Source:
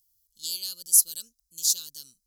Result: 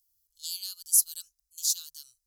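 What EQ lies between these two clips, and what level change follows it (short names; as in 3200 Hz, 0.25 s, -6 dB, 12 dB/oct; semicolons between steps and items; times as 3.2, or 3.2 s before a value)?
elliptic band-stop 100–1100 Hz, stop band 40 dB; bell 500 Hz +14 dB 0.63 oct; -3.5 dB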